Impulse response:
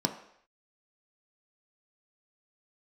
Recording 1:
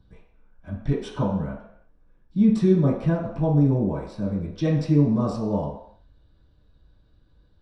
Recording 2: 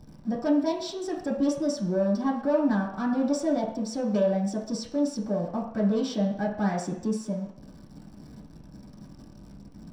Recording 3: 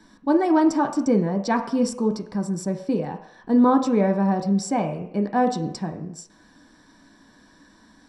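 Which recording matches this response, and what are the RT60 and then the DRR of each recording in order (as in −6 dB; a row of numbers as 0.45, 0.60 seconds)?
3; non-exponential decay, non-exponential decay, non-exponential decay; −10.5, −4.0, 4.0 decibels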